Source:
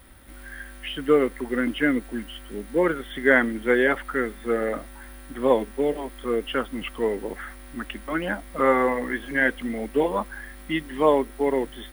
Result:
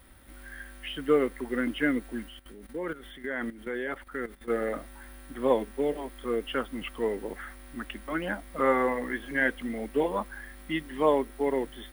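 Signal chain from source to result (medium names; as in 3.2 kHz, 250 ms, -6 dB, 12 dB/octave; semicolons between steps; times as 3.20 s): 2.28–4.50 s: level held to a coarse grid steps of 14 dB; trim -4.5 dB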